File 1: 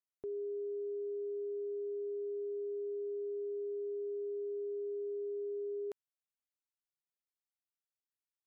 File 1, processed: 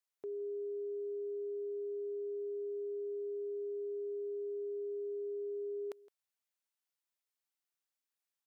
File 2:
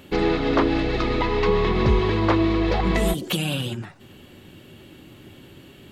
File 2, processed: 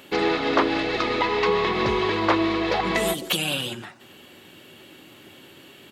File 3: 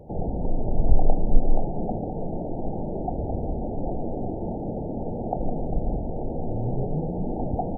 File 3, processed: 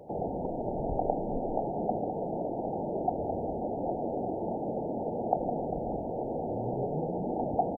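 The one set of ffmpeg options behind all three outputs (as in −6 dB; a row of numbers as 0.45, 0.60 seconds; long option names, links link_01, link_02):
-af "highpass=frequency=570:poles=1,aecho=1:1:165:0.1,volume=3.5dB"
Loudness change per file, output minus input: −0.5, −1.0, −3.5 LU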